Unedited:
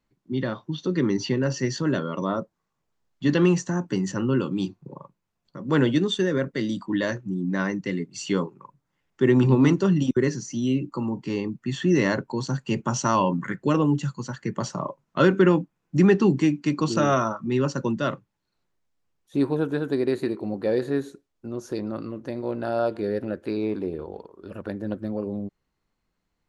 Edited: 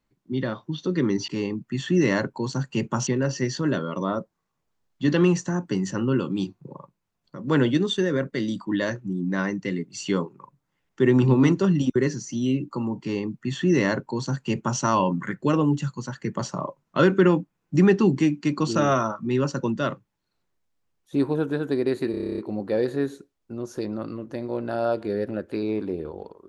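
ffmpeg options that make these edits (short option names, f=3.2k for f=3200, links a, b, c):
-filter_complex "[0:a]asplit=12[a][b][c][d][e][f][g][h][i][j][k][l];[a]atrim=end=1.282[m];[b]atrim=start=11.218:end=13.012[n];[c]atrim=start=1.278:end=20.352[o];[d]atrim=start=20.318:end=20.352[p];[e]atrim=start=20.318:end=20.352[q];[f]atrim=start=20.318:end=20.352[r];[g]atrim=start=20.318:end=20.352[s];[h]atrim=start=20.318:end=20.352[t];[i]atrim=start=20.318:end=20.352[u];[j]atrim=start=20.318:end=20.352[v];[k]atrim=start=20.318:end=20.352[w];[l]atrim=start=20.318[x];[m][n]acrossfade=d=0.004:c1=hsin:c2=hsin[y];[y][o]acrossfade=d=0.004:c1=hsin:c2=hsin[z];[z][p]acrossfade=d=0.004:c1=hsin:c2=hsin[aa];[aa][q]acrossfade=d=0.004:c1=hsin:c2=hsin[ab];[ab][r]acrossfade=d=0.004:c1=hsin:c2=hsin[ac];[ac][s]acrossfade=d=0.004:c1=hsin:c2=hsin[ad];[ad][t]acrossfade=d=0.004:c1=hsin:c2=hsin[ae];[ae][u]acrossfade=d=0.004:c1=hsin:c2=hsin[af];[af][v]acrossfade=d=0.004:c1=hsin:c2=hsin[ag];[ag][w]acrossfade=d=0.004:c1=hsin:c2=hsin[ah];[ah][x]acrossfade=d=0.004:c1=hsin:c2=hsin"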